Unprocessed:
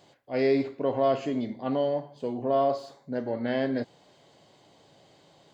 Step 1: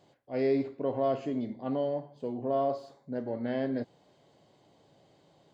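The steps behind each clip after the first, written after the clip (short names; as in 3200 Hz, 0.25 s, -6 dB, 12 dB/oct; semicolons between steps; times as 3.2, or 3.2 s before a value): tilt shelf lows +3.5 dB; gain -6 dB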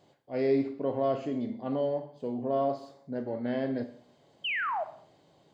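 painted sound fall, 4.44–4.84, 590–3200 Hz -31 dBFS; Schroeder reverb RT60 0.57 s, combs from 29 ms, DRR 10.5 dB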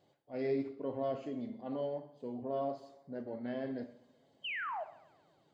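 bin magnitudes rounded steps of 15 dB; tape echo 0.123 s, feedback 66%, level -24 dB, low-pass 4500 Hz; gain -7.5 dB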